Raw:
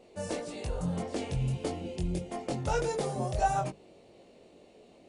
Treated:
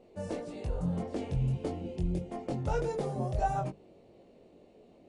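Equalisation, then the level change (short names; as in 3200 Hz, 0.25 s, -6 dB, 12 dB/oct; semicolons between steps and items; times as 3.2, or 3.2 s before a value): tilt -2.5 dB/oct; low shelf 100 Hz -7 dB; -4.0 dB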